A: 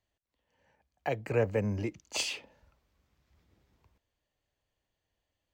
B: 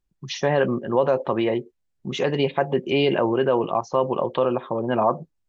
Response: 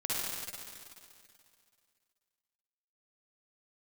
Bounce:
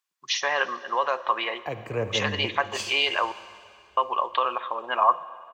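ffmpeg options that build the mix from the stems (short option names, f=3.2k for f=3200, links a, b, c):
-filter_complex "[0:a]equalizer=f=11k:w=4.2:g=-7,adelay=600,volume=-2dB,asplit=2[a][b];[b]volume=-14dB[c];[1:a]highpass=1.3k,acontrast=48,volume=-1dB,asplit=3[d][e][f];[d]atrim=end=3.32,asetpts=PTS-STARTPTS,afade=t=out:st=3.316:d=0.004:c=hsin[g];[e]atrim=start=3.32:end=3.97,asetpts=PTS-STARTPTS,volume=0[h];[f]atrim=start=3.97,asetpts=PTS-STARTPTS,afade=t=in:d=0.004:c=hsin[i];[g][h][i]concat=n=3:v=0:a=1,asplit=2[j][k];[k]volume=-22dB[l];[2:a]atrim=start_sample=2205[m];[c][l]amix=inputs=2:normalize=0[n];[n][m]afir=irnorm=-1:irlink=0[o];[a][j][o]amix=inputs=3:normalize=0,equalizer=f=1.1k:t=o:w=0.25:g=8.5"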